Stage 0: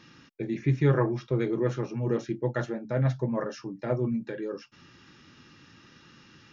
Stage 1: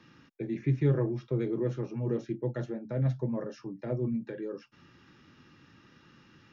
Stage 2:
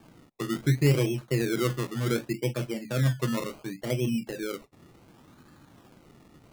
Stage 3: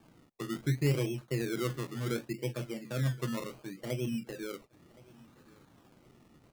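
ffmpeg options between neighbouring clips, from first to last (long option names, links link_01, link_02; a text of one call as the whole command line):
ffmpeg -i in.wav -filter_complex "[0:a]acrossover=split=140|590|2400[link_01][link_02][link_03][link_04];[link_03]acompressor=threshold=-45dB:ratio=6[link_05];[link_01][link_02][link_05][link_04]amix=inputs=4:normalize=0,highshelf=frequency=3400:gain=-9.5,volume=-2.5dB" out.wav
ffmpeg -i in.wav -af "acrusher=samples=22:mix=1:aa=0.000001:lfo=1:lforange=13.2:lforate=0.68,volume=3.5dB" out.wav
ffmpeg -i in.wav -af "aecho=1:1:1070|2140:0.0668|0.0221,volume=-6.5dB" out.wav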